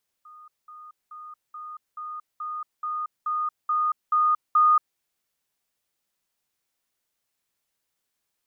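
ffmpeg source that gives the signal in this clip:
ffmpeg -f lavfi -i "aevalsrc='pow(10,(-44.5+3*floor(t/0.43))/20)*sin(2*PI*1230*t)*clip(min(mod(t,0.43),0.23-mod(t,0.43))/0.005,0,1)':duration=4.73:sample_rate=44100" out.wav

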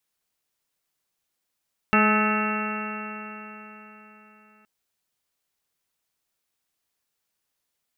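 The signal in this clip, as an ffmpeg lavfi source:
ffmpeg -f lavfi -i "aevalsrc='0.1*pow(10,-3*t/4)*sin(2*PI*212.1*t)+0.0447*pow(10,-3*t/4)*sin(2*PI*424.79*t)+0.0355*pow(10,-3*t/4)*sin(2*PI*638.66*t)+0.0473*pow(10,-3*t/4)*sin(2*PI*854.29*t)+0.0106*pow(10,-3*t/4)*sin(2*PI*1072.25*t)+0.1*pow(10,-3*t/4)*sin(2*PI*1293.12*t)+0.0316*pow(10,-3*t/4)*sin(2*PI*1517.44*t)+0.0447*pow(10,-3*t/4)*sin(2*PI*1745.74*t)+0.02*pow(10,-3*t/4)*sin(2*PI*1978.56*t)+0.0376*pow(10,-3*t/4)*sin(2*PI*2216.39*t)+0.0106*pow(10,-3*t/4)*sin(2*PI*2459.71*t)+0.075*pow(10,-3*t/4)*sin(2*PI*2709*t)':duration=2.72:sample_rate=44100" out.wav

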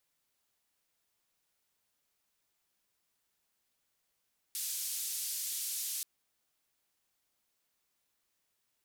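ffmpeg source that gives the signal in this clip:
ffmpeg -f lavfi -i "anoisesrc=color=white:duration=1.48:sample_rate=44100:seed=1,highpass=frequency=4600,lowpass=frequency=14000,volume=-28.8dB" out.wav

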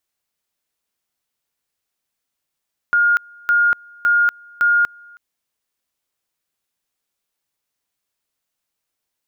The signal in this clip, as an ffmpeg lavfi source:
ffmpeg -f lavfi -i "aevalsrc='pow(10,(-11.5-28.5*gte(mod(t,0.56),0.24))/20)*sin(2*PI*1420*t)':duration=2.24:sample_rate=44100" out.wav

